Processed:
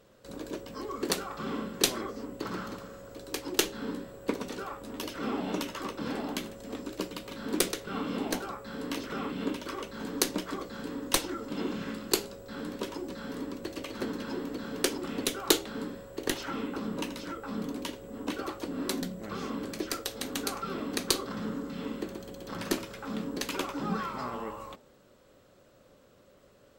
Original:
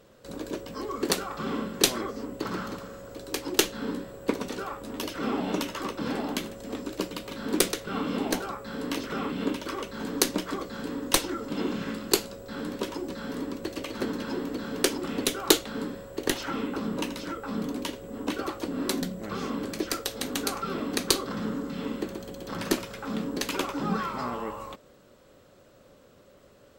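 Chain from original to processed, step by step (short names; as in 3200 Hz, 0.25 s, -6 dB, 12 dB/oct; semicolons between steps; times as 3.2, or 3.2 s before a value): de-hum 80.9 Hz, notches 11; gain -3.5 dB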